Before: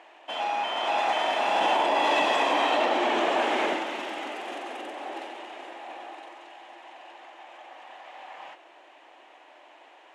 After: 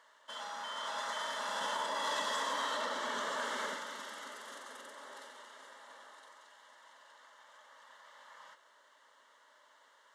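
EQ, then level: amplifier tone stack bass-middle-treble 5-5-5; static phaser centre 500 Hz, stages 8; +7.5 dB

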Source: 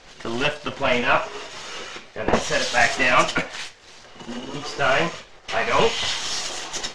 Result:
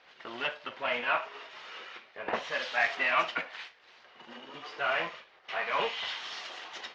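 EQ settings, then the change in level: high-pass 1.4 kHz 6 dB/octave; distance through air 310 m; -3.5 dB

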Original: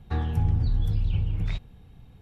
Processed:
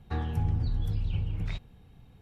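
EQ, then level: bass shelf 120 Hz -4 dB; band-stop 3.5 kHz, Q 29; -2.0 dB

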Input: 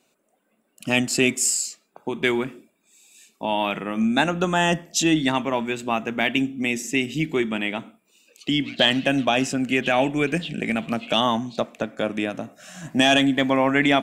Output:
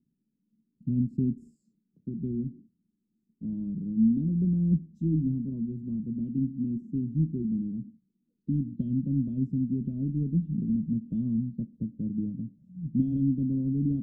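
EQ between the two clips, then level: inverse Chebyshev low-pass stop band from 720 Hz, stop band 60 dB; +4.0 dB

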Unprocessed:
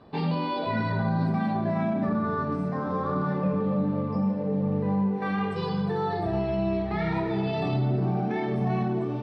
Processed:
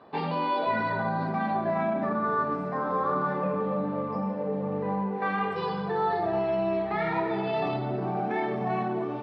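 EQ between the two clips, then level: band-pass filter 1.1 kHz, Q 0.56; +4.0 dB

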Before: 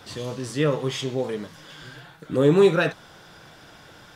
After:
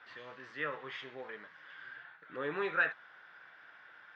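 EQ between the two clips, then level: band-pass filter 1.7 kHz, Q 2.6; distance through air 190 m; 0.0 dB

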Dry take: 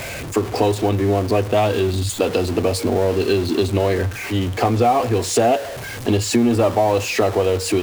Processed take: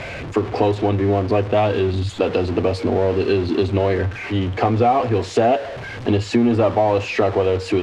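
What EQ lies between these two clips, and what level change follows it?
low-pass 3.3 kHz 12 dB/octave; 0.0 dB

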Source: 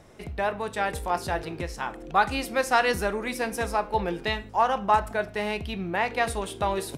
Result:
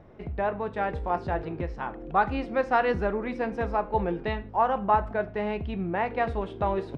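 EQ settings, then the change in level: tape spacing loss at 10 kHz 42 dB; +2.5 dB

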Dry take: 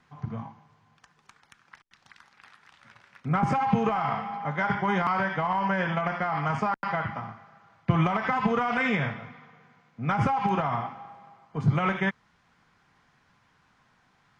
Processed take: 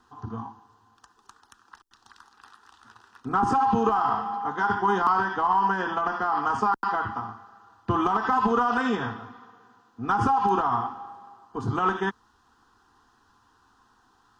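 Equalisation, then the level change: static phaser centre 590 Hz, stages 6; +6.0 dB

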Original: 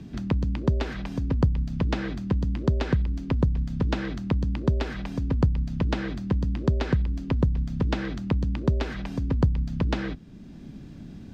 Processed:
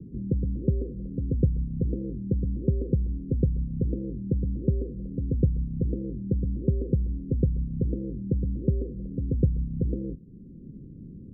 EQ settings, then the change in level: rippled Chebyshev low-pass 530 Hz, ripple 3 dB; 0.0 dB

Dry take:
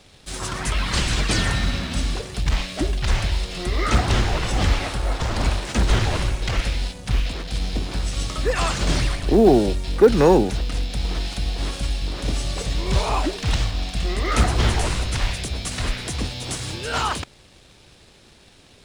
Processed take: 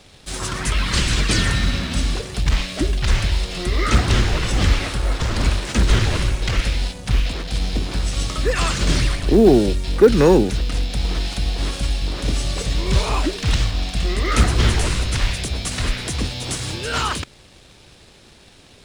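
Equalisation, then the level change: dynamic bell 770 Hz, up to -7 dB, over -39 dBFS, Q 1.7; +3.0 dB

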